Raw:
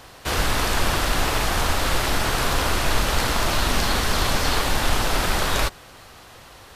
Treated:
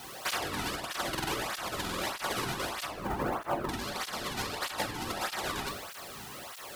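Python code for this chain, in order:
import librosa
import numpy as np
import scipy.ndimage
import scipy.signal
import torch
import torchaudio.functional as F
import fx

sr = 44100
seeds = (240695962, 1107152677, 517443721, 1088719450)

p1 = fx.lowpass(x, sr, hz=1100.0, slope=12, at=(2.87, 3.69))
p2 = fx.quant_dither(p1, sr, seeds[0], bits=8, dither='triangular')
p3 = fx.over_compress(p2, sr, threshold_db=-25.0, ratio=-0.5)
p4 = p3 + fx.echo_single(p3, sr, ms=355, db=-17.5, dry=0)
p5 = fx.room_shoebox(p4, sr, seeds[1], volume_m3=310.0, walls='mixed', distance_m=1.0)
p6 = fx.buffer_glitch(p5, sr, at_s=(1.1, 1.83), block=2048, repeats=3)
p7 = fx.flanger_cancel(p6, sr, hz=1.6, depth_ms=1.9)
y = p7 * librosa.db_to_amplitude(-5.5)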